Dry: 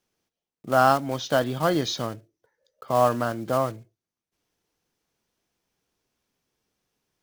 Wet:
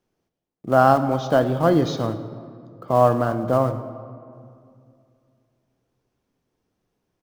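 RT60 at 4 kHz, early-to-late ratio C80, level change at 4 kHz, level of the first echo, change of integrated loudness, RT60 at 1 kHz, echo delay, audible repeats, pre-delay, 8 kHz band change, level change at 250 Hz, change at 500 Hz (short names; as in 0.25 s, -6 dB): 1.3 s, 12.5 dB, -4.5 dB, -20.0 dB, +4.0 dB, 2.2 s, 0.107 s, 1, 3 ms, n/a, +6.5 dB, +5.0 dB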